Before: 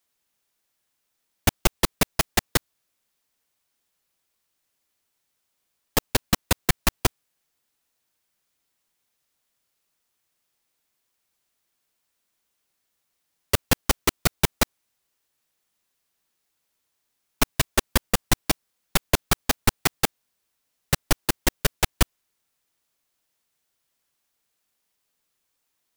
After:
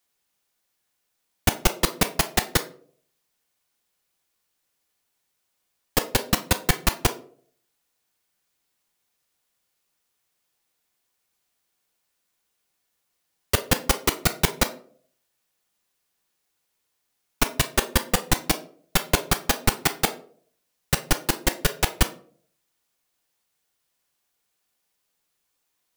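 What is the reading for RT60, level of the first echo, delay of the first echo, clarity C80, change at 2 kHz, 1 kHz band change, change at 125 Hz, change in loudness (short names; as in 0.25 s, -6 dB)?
0.55 s, none, none, 19.0 dB, +1.0 dB, +1.0 dB, 0.0 dB, +0.5 dB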